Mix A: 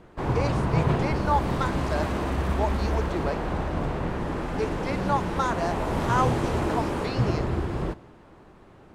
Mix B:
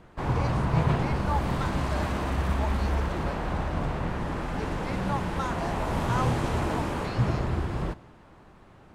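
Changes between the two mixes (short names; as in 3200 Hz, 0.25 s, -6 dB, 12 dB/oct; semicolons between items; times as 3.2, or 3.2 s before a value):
speech -6.0 dB; master: add bell 380 Hz -5 dB 1.2 oct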